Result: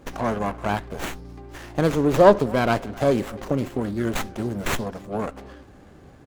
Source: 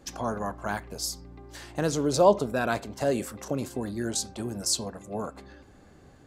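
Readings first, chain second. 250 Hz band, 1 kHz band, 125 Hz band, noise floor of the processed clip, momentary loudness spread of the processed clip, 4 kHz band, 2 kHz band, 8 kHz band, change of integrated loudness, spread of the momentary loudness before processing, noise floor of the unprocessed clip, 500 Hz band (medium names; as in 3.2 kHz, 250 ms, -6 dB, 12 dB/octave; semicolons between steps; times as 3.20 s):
+6.5 dB, +5.5 dB, +7.5 dB, -49 dBFS, 18 LU, -1.5 dB, +6.0 dB, -7.5 dB, +5.0 dB, 15 LU, -54 dBFS, +6.0 dB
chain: speakerphone echo 260 ms, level -21 dB; sliding maximum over 9 samples; trim +6 dB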